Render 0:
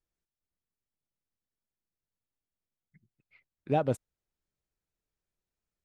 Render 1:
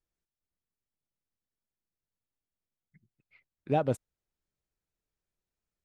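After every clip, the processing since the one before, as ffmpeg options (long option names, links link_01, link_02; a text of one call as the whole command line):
ffmpeg -i in.wav -af anull out.wav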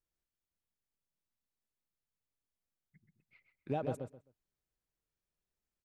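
ffmpeg -i in.wav -filter_complex "[0:a]acompressor=threshold=-29dB:ratio=4,asplit=2[link_01][link_02];[link_02]adelay=130,lowpass=frequency=3000:poles=1,volume=-6dB,asplit=2[link_03][link_04];[link_04]adelay=130,lowpass=frequency=3000:poles=1,volume=0.2,asplit=2[link_05][link_06];[link_06]adelay=130,lowpass=frequency=3000:poles=1,volume=0.2[link_07];[link_03][link_05][link_07]amix=inputs=3:normalize=0[link_08];[link_01][link_08]amix=inputs=2:normalize=0,volume=-3.5dB" out.wav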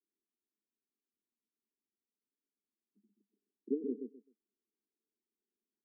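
ffmpeg -i in.wav -af "asuperpass=centerf=300:order=20:qfactor=1.2,volume=5dB" out.wav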